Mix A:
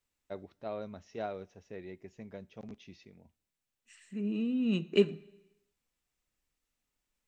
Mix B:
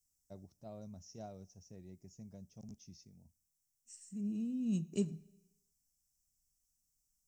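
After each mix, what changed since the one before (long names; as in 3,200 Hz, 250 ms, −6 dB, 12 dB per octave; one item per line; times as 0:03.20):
master: add drawn EQ curve 160 Hz 0 dB, 440 Hz −16 dB, 680 Hz −11 dB, 1,500 Hz −22 dB, 2,100 Hz −22 dB, 3,900 Hz −15 dB, 5,500 Hz +8 dB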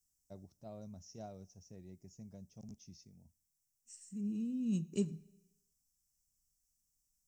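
second voice: add Butterworth band-reject 680 Hz, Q 4.3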